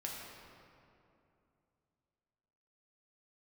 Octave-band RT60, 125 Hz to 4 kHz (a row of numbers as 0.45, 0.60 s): 3.3, 3.2, 2.8, 2.6, 2.1, 1.5 s